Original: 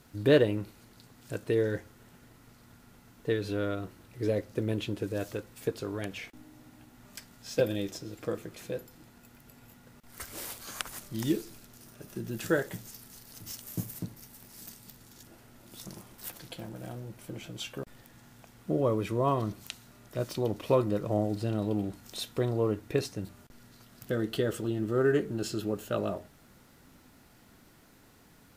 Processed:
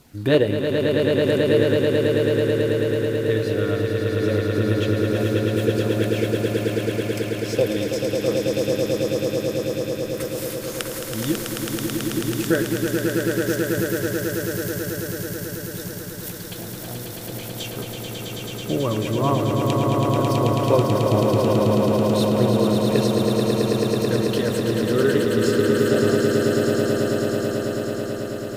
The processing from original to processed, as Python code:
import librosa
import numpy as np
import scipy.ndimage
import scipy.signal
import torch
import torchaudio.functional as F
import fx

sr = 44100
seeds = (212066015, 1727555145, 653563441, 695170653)

y = fx.filter_lfo_notch(x, sr, shape='saw_down', hz=2.9, low_hz=340.0, high_hz=1800.0, q=2.7)
y = fx.echo_swell(y, sr, ms=109, loudest=8, wet_db=-5.0)
y = y * librosa.db_to_amplitude(5.5)